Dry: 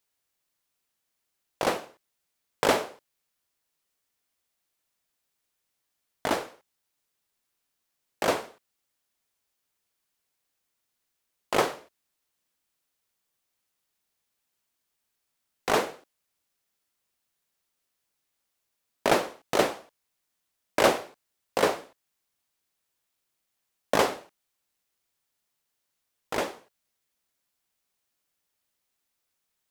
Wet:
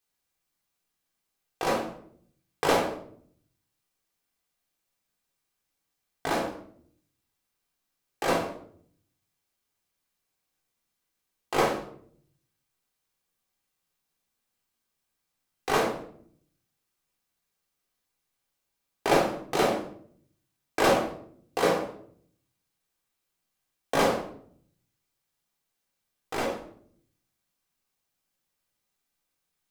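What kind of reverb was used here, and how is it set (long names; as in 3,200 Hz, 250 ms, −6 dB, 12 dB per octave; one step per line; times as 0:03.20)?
rectangular room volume 850 cubic metres, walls furnished, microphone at 3.7 metres
level −5 dB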